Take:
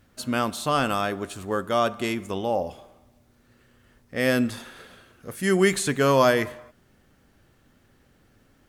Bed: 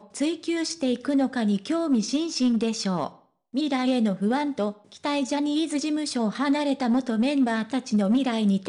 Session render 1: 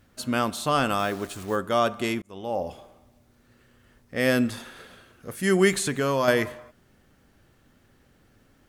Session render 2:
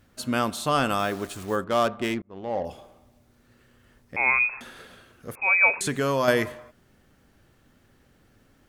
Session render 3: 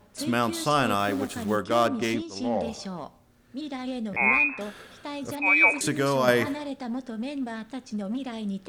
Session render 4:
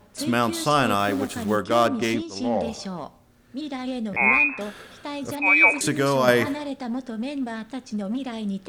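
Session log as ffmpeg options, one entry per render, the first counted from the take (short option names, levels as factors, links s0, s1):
-filter_complex "[0:a]asplit=3[s0][s1][s2];[s0]afade=t=out:st=0.98:d=0.02[s3];[s1]acrusher=bits=8:dc=4:mix=0:aa=0.000001,afade=t=in:st=0.98:d=0.02,afade=t=out:st=1.55:d=0.02[s4];[s2]afade=t=in:st=1.55:d=0.02[s5];[s3][s4][s5]amix=inputs=3:normalize=0,asettb=1/sr,asplit=3[s6][s7][s8];[s6]atrim=end=5.704[s9];[s7]atrim=start=5.7:end=6.28,asetpts=PTS-STARTPTS,afade=t=in:d=0.004:c=qsin,afade=t=out:st=0.576:d=0.004:c=qsin,acompressor=threshold=0.0794:ratio=2.5:attack=3.2:release=140:knee=1:detection=peak[s10];[s8]atrim=start=6.276[s11];[s9][s10]acrossfade=d=0.004:c1=hsin:c2=qsin[s12];[s12][s11]acrossfade=d=0.004:c1=qsin:c2=hsin,asplit=2[s13][s14];[s13]atrim=end=2.22,asetpts=PTS-STARTPTS,afade=t=out:st=2.216:d=0.004:c=hsin[s15];[s14]atrim=start=2.22,asetpts=PTS-STARTPTS,afade=t=in:d=0.48[s16];[s15][s16]concat=n=2:v=0:a=1"
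-filter_complex "[0:a]asettb=1/sr,asplit=3[s0][s1][s2];[s0]atrim=end=1.644[s3];[s1]atrim=start=1.64:end=2.65,asetpts=PTS-STARTPTS,afade=t=in:d=0.004:c=qsin,afade=t=out:st=1.006:d=0.004:c=qsin,adynamicsmooth=sensitivity=4:basefreq=1100[s4];[s2]atrim=start=2.646[s5];[s3][s4]acrossfade=d=0.004:c1=hsin:c2=qsin[s6];[s6][s5]acrossfade=d=0.004:c1=qsin:c2=hsin,asettb=1/sr,asplit=3[s7][s8][s9];[s7]atrim=end=4.164[s10];[s8]atrim=start=4.16:end=4.61,asetpts=PTS-STARTPTS,afade=t=in:d=0.004:c=qsin,afade=t=out:st=0.446:d=0.004:c=qsin,lowpass=f=2300:t=q:w=0.5098,lowpass=f=2300:t=q:w=0.6013,lowpass=f=2300:t=q:w=0.9,lowpass=f=2300:t=q:w=2.563,afreqshift=-2700[s11];[s9]atrim=start=4.606[s12];[s10][s11]acrossfade=d=0.004:c1=hsin:c2=qsin[s13];[s13][s12]acrossfade=d=0.004:c1=qsin:c2=hsin,asettb=1/sr,asplit=3[s14][s15][s16];[s14]atrim=end=5.354[s17];[s15]atrim=start=5.35:end=5.81,asetpts=PTS-STARTPTS,afade=t=in:d=0.004:c=qsin,afade=t=out:st=0.456:d=0.004:c=qsin,lowpass=f=2300:t=q:w=0.5098,lowpass=f=2300:t=q:w=0.6013,lowpass=f=2300:t=q:w=0.9,lowpass=f=2300:t=q:w=2.563,afreqshift=-2700[s18];[s16]atrim=start=5.806[s19];[s17][s18]acrossfade=d=0.004:c1=hsin:c2=qsin[s20];[s20][s19]acrossfade=d=0.004:c1=qsin:c2=hsin"
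-filter_complex "[1:a]volume=0.335[s0];[0:a][s0]amix=inputs=2:normalize=0"
-af "volume=1.41"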